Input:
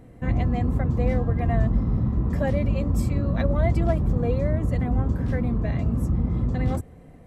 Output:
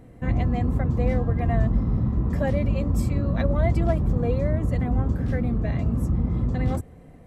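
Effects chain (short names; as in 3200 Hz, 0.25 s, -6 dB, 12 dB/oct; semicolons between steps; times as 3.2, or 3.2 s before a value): 5.14–5.67 notch 1000 Hz, Q 6.7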